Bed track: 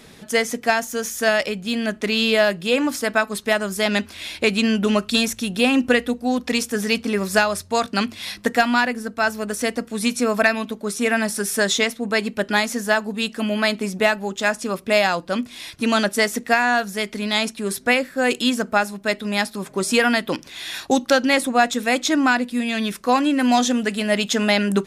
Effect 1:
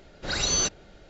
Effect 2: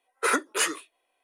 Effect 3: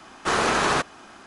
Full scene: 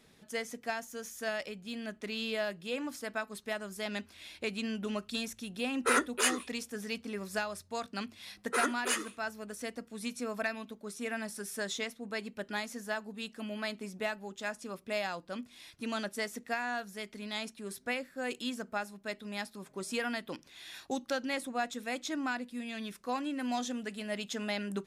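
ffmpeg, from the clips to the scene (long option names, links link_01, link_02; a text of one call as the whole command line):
ffmpeg -i bed.wav -i cue0.wav -i cue1.wav -filter_complex "[2:a]asplit=2[link_01][link_02];[0:a]volume=-17dB[link_03];[link_02]aecho=1:1:69|138|207:0.0794|0.0373|0.0175[link_04];[link_01]atrim=end=1.23,asetpts=PTS-STARTPTS,volume=-3.5dB,afade=type=in:duration=0.004:curve=hsin,afade=type=out:start_time=1.226:duration=0.004:curve=hsin,adelay=5630[link_05];[link_04]atrim=end=1.23,asetpts=PTS-STARTPTS,volume=-7dB,afade=type=in:duration=0.004:curve=hsin,afade=type=out:start_time=1.226:duration=0.004:curve=hsin,adelay=8300[link_06];[link_03][link_05][link_06]amix=inputs=3:normalize=0" out.wav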